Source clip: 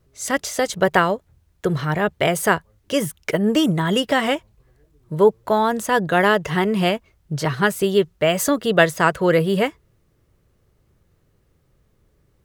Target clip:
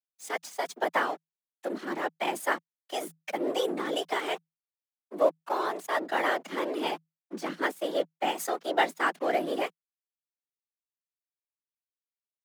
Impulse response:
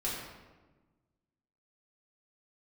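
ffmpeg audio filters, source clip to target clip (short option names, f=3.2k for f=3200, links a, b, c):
-af "aeval=exprs='sgn(val(0))*max(abs(val(0))-0.0251,0)':c=same,afftfilt=real='hypot(re,im)*cos(2*PI*random(0))':imag='hypot(re,im)*sin(2*PI*random(1))':win_size=512:overlap=0.75,afreqshift=160,volume=-4dB"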